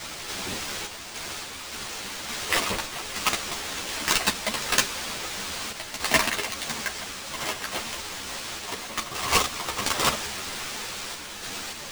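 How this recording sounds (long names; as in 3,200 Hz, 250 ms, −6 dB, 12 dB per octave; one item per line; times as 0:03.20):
a quantiser's noise floor 6 bits, dither triangular
sample-and-hold tremolo 3.5 Hz
aliases and images of a low sample rate 13,000 Hz, jitter 0%
a shimmering, thickened sound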